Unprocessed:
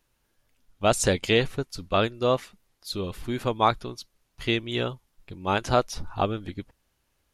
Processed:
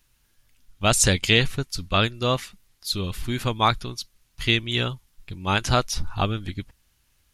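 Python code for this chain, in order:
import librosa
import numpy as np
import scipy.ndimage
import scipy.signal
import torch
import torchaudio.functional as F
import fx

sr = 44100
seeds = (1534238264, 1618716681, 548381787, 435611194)

y = fx.peak_eq(x, sr, hz=520.0, db=-11.5, octaves=2.6)
y = y * 10.0 ** (8.5 / 20.0)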